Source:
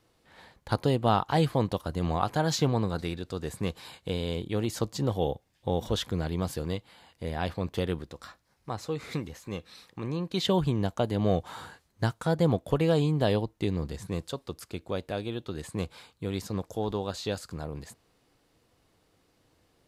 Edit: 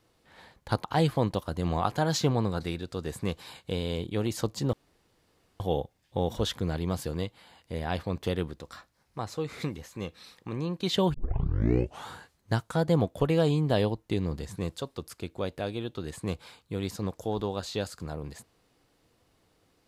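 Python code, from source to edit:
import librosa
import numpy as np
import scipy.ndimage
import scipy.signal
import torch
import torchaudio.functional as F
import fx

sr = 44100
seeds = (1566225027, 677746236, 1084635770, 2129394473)

y = fx.edit(x, sr, fx.cut(start_s=0.84, length_s=0.38),
    fx.insert_room_tone(at_s=5.11, length_s=0.87),
    fx.tape_start(start_s=10.65, length_s=0.95), tone=tone)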